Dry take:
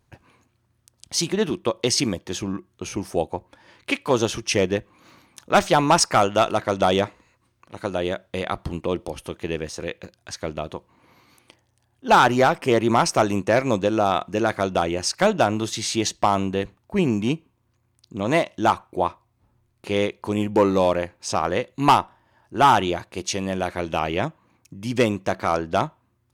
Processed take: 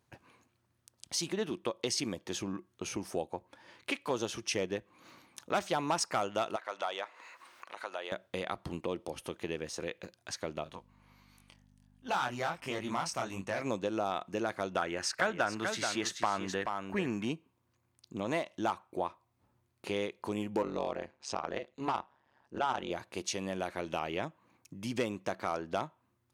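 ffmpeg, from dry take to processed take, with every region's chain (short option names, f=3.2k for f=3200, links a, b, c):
-filter_complex "[0:a]asettb=1/sr,asplit=3[a][b][c];[a]atrim=end=6.564[d];[b]atrim=start=6.56:end=8.12,asetpts=PTS-STARTPTS,afade=t=in:d=0.004:c=qsin,afade=t=out:st=1.556:d=0.004:c=qsin,highpass=910,highshelf=f=3.9k:g=-11.5,acompressor=mode=upward:threshold=-30dB:ratio=2.5:attack=3.2:release=140:knee=2.83:detection=peak[e];[c]atrim=start=8.116[f];[d][e]acrossfade=d=0.004:c1=hsin:c2=qsin[g];[g][f]acrossfade=d=0.004:c1=qsin:c2=hsin,asettb=1/sr,asplit=3[h][i][j];[h]atrim=end=10.644[k];[i]atrim=start=10.64:end=13.6,asetpts=PTS-STARTPTS,afade=t=in:d=0.004:c=qsin,afade=t=out:st=2.956:d=0.004:c=qsin,equalizer=f=400:t=o:w=1.2:g=-9,flanger=delay=20:depth=5.5:speed=1.4,aeval=exprs='val(0)+0.00282*(sin(2*PI*50*n/s)+sin(2*PI*2*50*n/s)/2+sin(2*PI*3*50*n/s)/3+sin(2*PI*4*50*n/s)/4+sin(2*PI*5*50*n/s)/5)':c=same[l];[j]atrim=start=13.596[m];[k][l]acrossfade=d=0.004:c1=hsin:c2=qsin[n];[n][m]acrossfade=d=0.004:c1=qsin:c2=hsin,asettb=1/sr,asplit=3[o][p][q];[o]atrim=end=14.764[r];[p]atrim=start=14.76:end=17.25,asetpts=PTS-STARTPTS,afade=t=in:d=0.004:c=qsin,afade=t=out:st=2.486:d=0.004:c=qsin,equalizer=f=1.6k:w=1.6:g=12,aecho=1:1:431:0.376,atrim=end_sample=109809[s];[q]atrim=start=17.246[t];[r][s]acrossfade=d=0.004:c1=hsin:c2=qsin[u];[u][t]acrossfade=d=0.004:c1=qsin:c2=hsin,asettb=1/sr,asplit=3[v][w][x];[v]atrim=end=20.624[y];[w]atrim=start=20.62:end=22.91,asetpts=PTS-STARTPTS,afade=t=in:d=0.004:c=qsin,afade=t=out:st=2.286:d=0.004:c=qsin,lowpass=6.3k,tremolo=f=140:d=0.947[z];[x]atrim=start=22.906[aa];[y][z]acrossfade=d=0.004:c1=hsin:c2=qsin[ab];[ab][aa]acrossfade=d=0.004:c1=qsin:c2=hsin,highpass=f=170:p=1,acompressor=threshold=-31dB:ratio=2,volume=-4.5dB"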